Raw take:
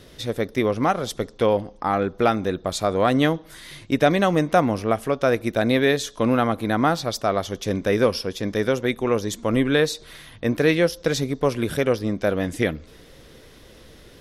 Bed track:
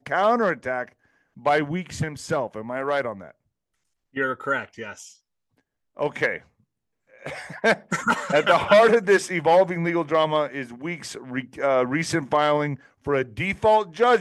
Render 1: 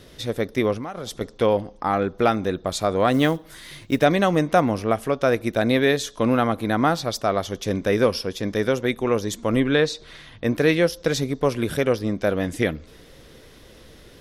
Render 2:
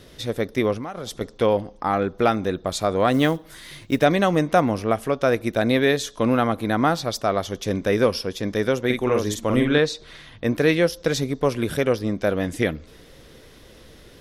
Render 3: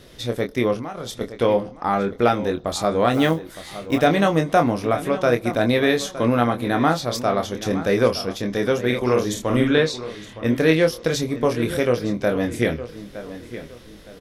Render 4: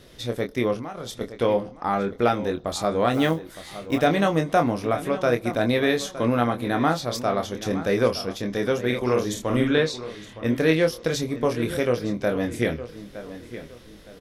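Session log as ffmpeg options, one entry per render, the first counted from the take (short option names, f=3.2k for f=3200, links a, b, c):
-filter_complex "[0:a]asettb=1/sr,asplit=3[a][b][c];[a]atrim=end=0.744[d];[b]atrim=start=0.74:end=1.21,asetpts=PTS-STARTPTS,afade=t=in:d=0.004:c=qsin,afade=t=out:st=0.466:d=0.004:c=qsin,acompressor=threshold=-27dB:ratio=16:attack=3.2:release=140:knee=1:detection=peak[e];[c]atrim=start=1.206[f];[d][e]acrossfade=d=0.004:c1=hsin:c2=qsin[g];[g][f]acrossfade=d=0.004:c1=qsin:c2=hsin,asettb=1/sr,asplit=3[h][i][j];[h]atrim=end=3.134[k];[i]atrim=start=3.13:end=4.04,asetpts=PTS-STARTPTS,afade=t=in:d=0.004:c=qsin,afade=t=out:st=0.906:d=0.004:c=qsin,acrusher=bits=7:mode=log:mix=0:aa=0.000001[l];[j]atrim=start=4.036[m];[k][l]acrossfade=d=0.004:c1=hsin:c2=qsin[n];[n][m]acrossfade=d=0.004:c1=qsin:c2=hsin,asettb=1/sr,asplit=3[o][p][q];[o]atrim=end=9.604[r];[p]atrim=start=9.6:end=10.44,asetpts=PTS-STARTPTS,afade=t=in:d=0.004:c=qsin,afade=t=out:st=0.836:d=0.004:c=qsin,lowpass=6.3k[s];[q]atrim=start=10.436[t];[r][s]acrossfade=d=0.004:c1=hsin:c2=qsin[u];[u][t]acrossfade=d=0.004:c1=qsin:c2=hsin"
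-filter_complex "[0:a]asettb=1/sr,asplit=3[a][b][c];[a]atrim=end=8.854[d];[b]atrim=start=8.85:end=9.78,asetpts=PTS-STARTPTS,afade=t=in:d=0.004:c=qsin,afade=t=out:st=0.926:d=0.004:c=qsin,asplit=2[e][f];[f]adelay=48,volume=-4dB[g];[e][g]amix=inputs=2:normalize=0,atrim=end_sample=41013[h];[c]atrim=start=9.776[i];[d][h]acrossfade=d=0.004:c1=hsin:c2=qsin[j];[j][i]acrossfade=d=0.004:c1=qsin:c2=hsin"
-filter_complex "[0:a]asplit=2[a][b];[b]adelay=25,volume=-6dB[c];[a][c]amix=inputs=2:normalize=0,asplit=2[d][e];[e]adelay=914,lowpass=f=4.5k:p=1,volume=-13.5dB,asplit=2[f][g];[g]adelay=914,lowpass=f=4.5k:p=1,volume=0.33,asplit=2[h][i];[i]adelay=914,lowpass=f=4.5k:p=1,volume=0.33[j];[d][f][h][j]amix=inputs=4:normalize=0"
-af "volume=-3dB"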